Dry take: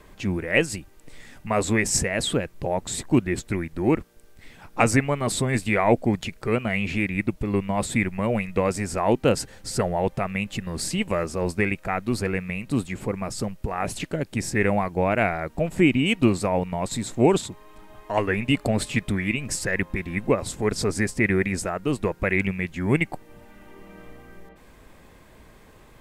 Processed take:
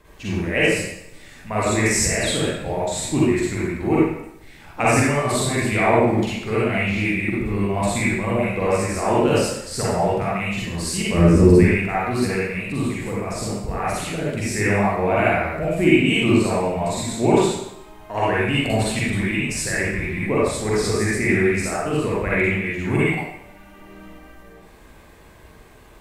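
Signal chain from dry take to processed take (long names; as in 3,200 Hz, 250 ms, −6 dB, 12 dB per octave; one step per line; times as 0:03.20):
0:11.14–0:11.59: low shelf with overshoot 450 Hz +14 dB, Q 1.5
convolution reverb RT60 0.80 s, pre-delay 39 ms, DRR −8.5 dB
level −4.5 dB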